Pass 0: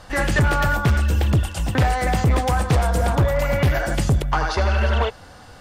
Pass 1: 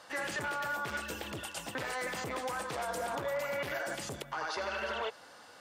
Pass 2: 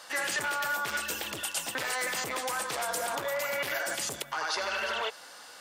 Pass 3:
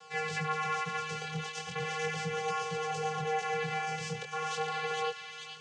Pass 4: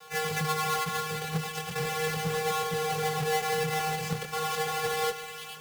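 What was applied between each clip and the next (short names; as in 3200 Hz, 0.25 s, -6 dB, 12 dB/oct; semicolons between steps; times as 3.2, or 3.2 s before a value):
Bessel high-pass 440 Hz, order 2; notch 750 Hz, Q 15; limiter -20 dBFS, peak gain reduction 10 dB; gain -7 dB
tilt +2.5 dB/oct; gain +3.5 dB
vocoder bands 8, square 156 Hz; chorus 0.39 Hz, delay 16.5 ms, depth 7.9 ms; thin delay 0.442 s, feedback 50%, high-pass 2100 Hz, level -4 dB; gain +1.5 dB
half-waves squared off; on a send at -16.5 dB: reverb RT60 0.70 s, pre-delay 95 ms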